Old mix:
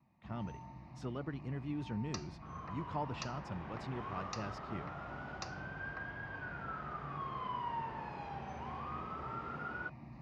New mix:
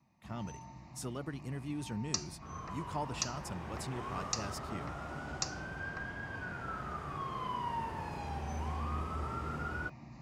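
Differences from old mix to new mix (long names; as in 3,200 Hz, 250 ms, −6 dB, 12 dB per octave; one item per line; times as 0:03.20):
second sound: remove high-pass filter 470 Hz 6 dB per octave
master: remove high-frequency loss of the air 230 metres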